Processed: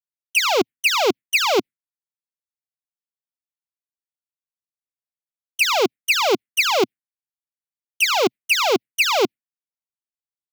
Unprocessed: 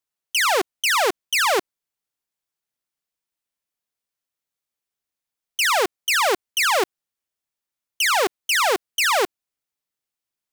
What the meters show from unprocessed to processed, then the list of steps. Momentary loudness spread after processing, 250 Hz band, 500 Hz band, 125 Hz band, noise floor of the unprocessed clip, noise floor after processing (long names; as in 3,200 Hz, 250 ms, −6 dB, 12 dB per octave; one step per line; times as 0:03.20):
4 LU, +7.5 dB, +3.0 dB, can't be measured, below −85 dBFS, below −85 dBFS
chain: noise gate with hold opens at −15 dBFS
octave-band graphic EQ 125/250/2,000/8,000 Hz +9/+12/+11/+4 dB
phaser swept by the level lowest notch 310 Hz, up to 1,800 Hz, full sweep at −11 dBFS